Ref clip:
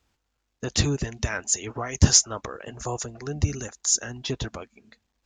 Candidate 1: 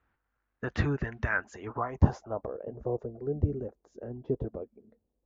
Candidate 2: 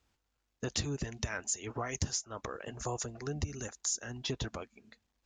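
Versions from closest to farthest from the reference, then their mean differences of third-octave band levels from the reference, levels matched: 2, 1; 4.5, 7.5 dB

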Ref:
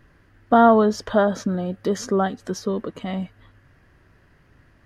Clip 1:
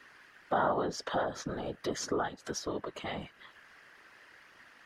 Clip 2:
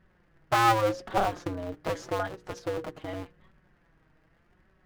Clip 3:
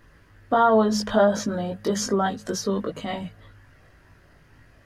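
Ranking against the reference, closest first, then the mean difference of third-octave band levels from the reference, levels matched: 3, 1, 2; 4.0, 7.5, 10.5 dB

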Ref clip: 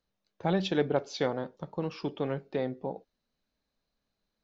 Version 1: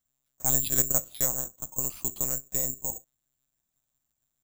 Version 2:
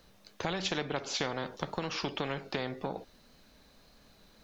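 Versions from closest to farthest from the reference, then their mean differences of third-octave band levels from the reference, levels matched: 2, 1; 9.5, 14.5 dB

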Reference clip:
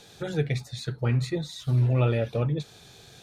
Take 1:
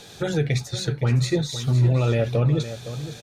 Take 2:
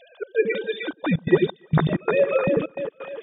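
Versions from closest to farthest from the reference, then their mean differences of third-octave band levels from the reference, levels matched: 1, 2; 4.0, 11.0 dB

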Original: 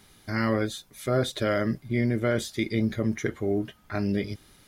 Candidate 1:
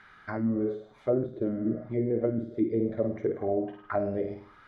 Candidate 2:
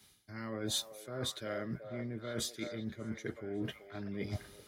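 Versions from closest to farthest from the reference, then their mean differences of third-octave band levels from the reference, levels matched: 2, 1; 7.0, 10.5 dB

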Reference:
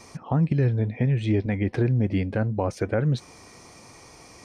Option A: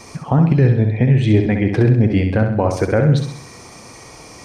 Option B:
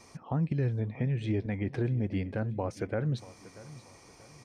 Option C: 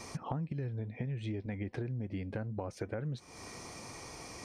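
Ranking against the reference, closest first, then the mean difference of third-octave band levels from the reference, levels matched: B, A, C; 1.5, 2.5, 5.5 dB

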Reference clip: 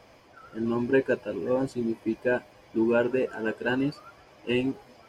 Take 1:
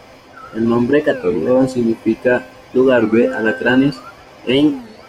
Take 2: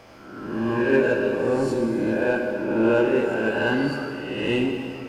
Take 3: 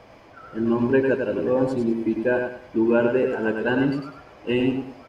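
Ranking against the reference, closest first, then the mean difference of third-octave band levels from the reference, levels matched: 1, 3, 2; 2.0, 4.0, 7.0 dB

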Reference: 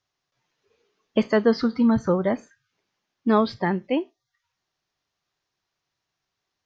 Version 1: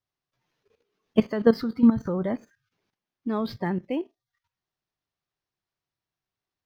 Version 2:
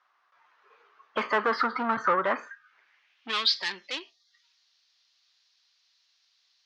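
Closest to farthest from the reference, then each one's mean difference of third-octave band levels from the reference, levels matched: 1, 2; 3.5, 9.5 dB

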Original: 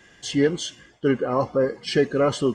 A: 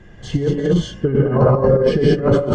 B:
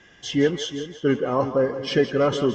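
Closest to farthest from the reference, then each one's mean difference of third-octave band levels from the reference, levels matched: B, A; 4.0, 9.0 dB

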